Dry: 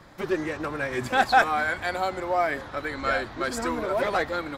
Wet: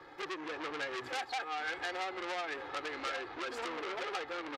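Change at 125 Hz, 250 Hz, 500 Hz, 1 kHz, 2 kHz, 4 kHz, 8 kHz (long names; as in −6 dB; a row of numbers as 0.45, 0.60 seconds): −22.5, −13.5, −13.5, −14.0, −12.0, −5.5, −10.5 decibels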